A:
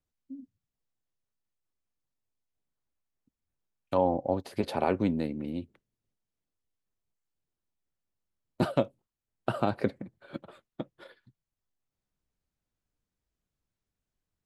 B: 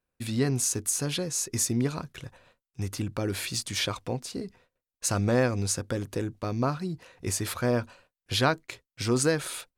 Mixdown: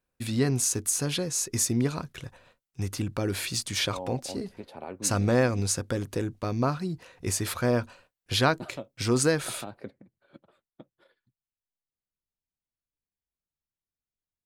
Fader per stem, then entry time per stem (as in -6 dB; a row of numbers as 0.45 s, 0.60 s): -12.5 dB, +1.0 dB; 0.00 s, 0.00 s